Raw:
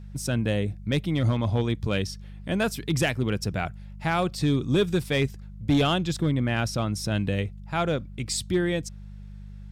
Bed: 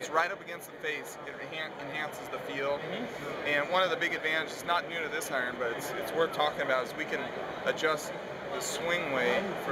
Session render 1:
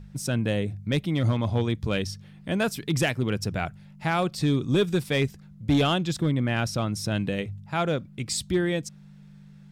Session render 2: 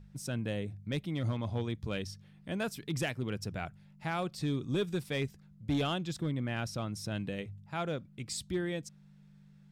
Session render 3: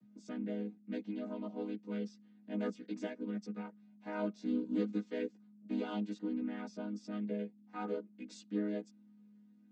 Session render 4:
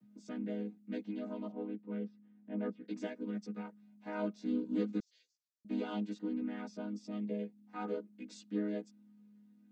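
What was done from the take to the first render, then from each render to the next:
de-hum 50 Hz, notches 2
trim -9.5 dB
vocoder on a held chord minor triad, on G#3; chorus voices 6, 0.5 Hz, delay 15 ms, depth 1.4 ms
1.52–2.88 s: distance through air 490 m; 5.00–5.65 s: Butterworth band-pass 5.7 kHz, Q 2; 6.93–7.43 s: peaking EQ 1.5 kHz -13.5 dB 0.31 oct

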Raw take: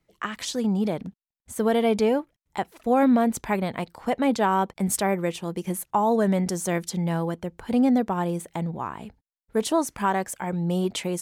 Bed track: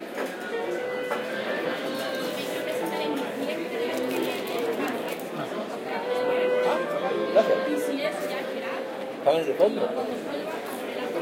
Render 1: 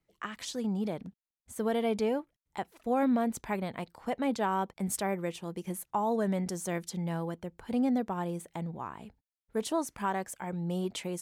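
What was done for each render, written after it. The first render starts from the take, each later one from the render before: trim -8 dB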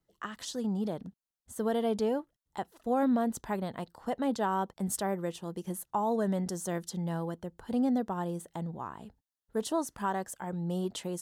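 peaking EQ 2.3 kHz -13 dB 0.29 oct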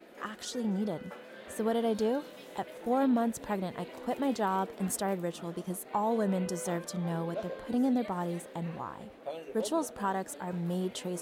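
add bed track -18 dB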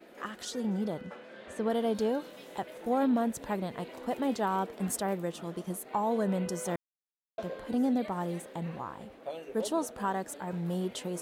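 1.01–1.70 s: distance through air 58 m; 6.76–7.38 s: mute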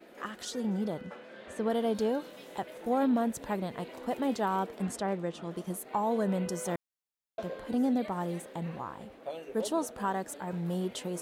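4.82–5.51 s: distance through air 65 m

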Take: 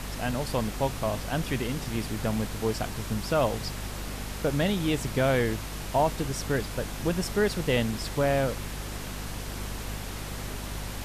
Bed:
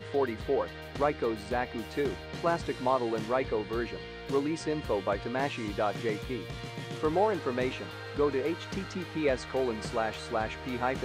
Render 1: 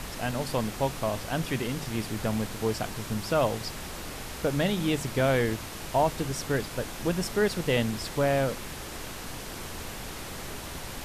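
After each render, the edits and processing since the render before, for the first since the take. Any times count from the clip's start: de-hum 50 Hz, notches 5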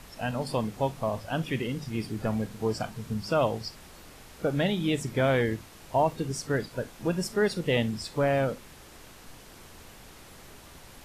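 noise print and reduce 11 dB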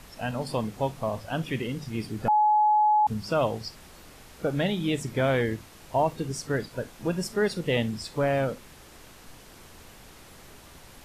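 2.28–3.07 s: bleep 848 Hz -17.5 dBFS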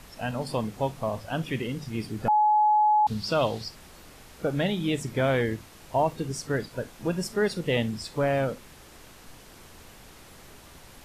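2.55–3.64 s: peaking EQ 4.1 kHz +11 dB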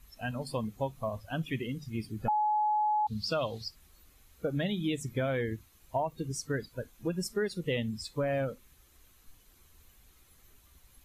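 expander on every frequency bin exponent 1.5; compression, threshold -27 dBFS, peak gain reduction 7.5 dB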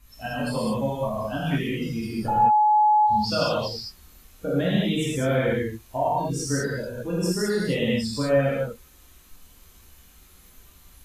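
gated-style reverb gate 240 ms flat, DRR -8 dB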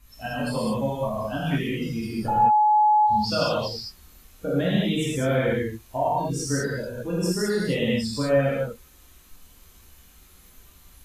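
no audible change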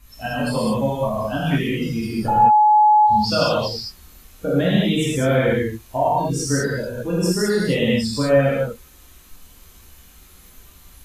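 trim +5 dB

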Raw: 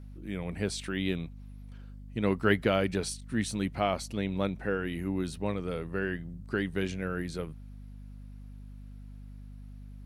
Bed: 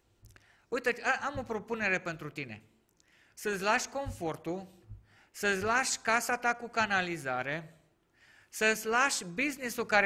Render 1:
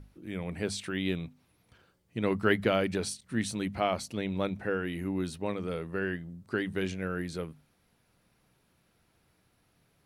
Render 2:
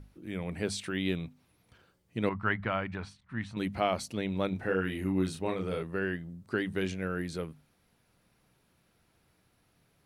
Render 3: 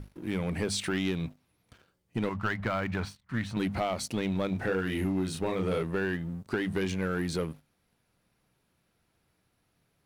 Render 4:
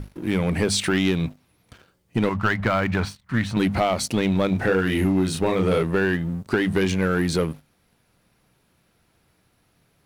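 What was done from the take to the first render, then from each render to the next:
hum notches 50/100/150/200/250 Hz
2.29–3.57 s: FFT filter 100 Hz 0 dB, 450 Hz -13 dB, 1 kHz +3 dB, 2.1 kHz -3 dB, 11 kHz -28 dB; 4.49–5.83 s: doubling 32 ms -4 dB
compression 12:1, threshold -31 dBFS, peak gain reduction 9 dB; waveshaping leveller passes 2
trim +9 dB

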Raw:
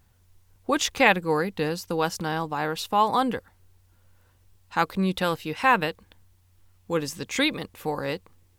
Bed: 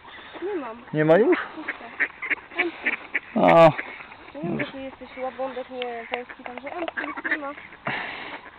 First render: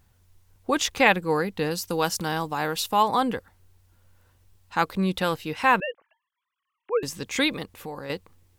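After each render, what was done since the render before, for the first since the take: 1.71–3.03 s: treble shelf 4.5 kHz +8.5 dB; 5.80–7.03 s: formants replaced by sine waves; 7.63–8.10 s: compression 2:1, threshold -37 dBFS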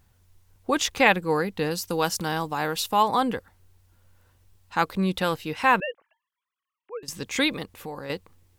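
5.83–7.08 s: fade out, to -14.5 dB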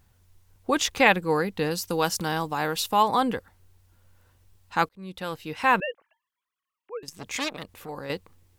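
4.89–5.81 s: fade in; 7.04–7.89 s: transformer saturation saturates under 2.7 kHz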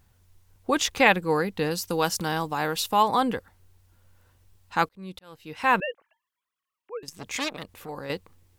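5.19–5.74 s: fade in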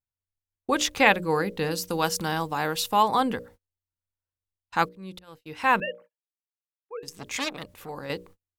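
hum notches 60/120/180/240/300/360/420/480/540/600 Hz; gate -48 dBFS, range -35 dB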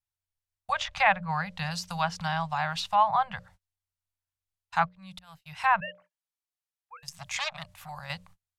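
elliptic band-stop 170–660 Hz, stop band 40 dB; low-pass that closes with the level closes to 1.9 kHz, closed at -21.5 dBFS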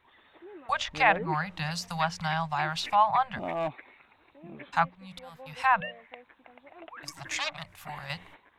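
add bed -18 dB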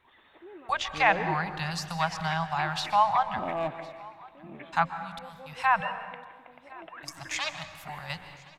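delay 1058 ms -23.5 dB; plate-style reverb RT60 1.4 s, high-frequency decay 0.65×, pre-delay 115 ms, DRR 10.5 dB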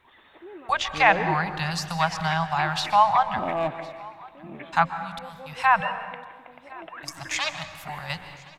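trim +4.5 dB

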